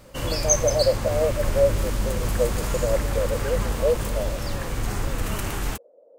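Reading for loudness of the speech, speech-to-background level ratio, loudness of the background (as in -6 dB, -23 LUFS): -26.0 LUFS, 1.0 dB, -27.0 LUFS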